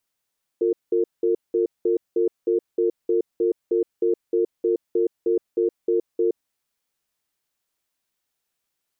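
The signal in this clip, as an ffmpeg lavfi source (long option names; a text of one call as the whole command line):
ffmpeg -f lavfi -i "aevalsrc='0.1*(sin(2*PI*353*t)+sin(2*PI*454*t))*clip(min(mod(t,0.31),0.12-mod(t,0.31))/0.005,0,1)':duration=5.89:sample_rate=44100" out.wav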